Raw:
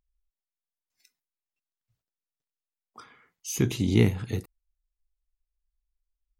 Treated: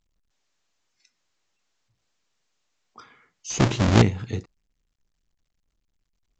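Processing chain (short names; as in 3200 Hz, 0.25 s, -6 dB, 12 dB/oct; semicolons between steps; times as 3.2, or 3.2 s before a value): 3.5–4.02 half-waves squared off; gain +1 dB; µ-law 128 kbps 16000 Hz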